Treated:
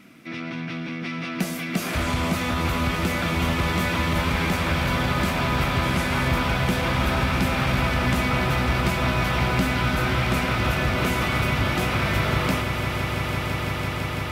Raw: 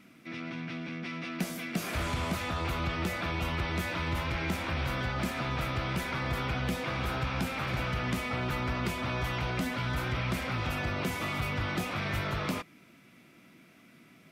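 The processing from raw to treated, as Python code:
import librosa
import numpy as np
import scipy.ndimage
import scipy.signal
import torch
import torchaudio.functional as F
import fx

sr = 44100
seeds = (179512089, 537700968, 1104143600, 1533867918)

y = fx.delta_mod(x, sr, bps=64000, step_db=-40.0, at=(5.83, 6.28))
y = fx.echo_swell(y, sr, ms=168, loudest=8, wet_db=-12)
y = F.gain(torch.from_numpy(y), 7.0).numpy()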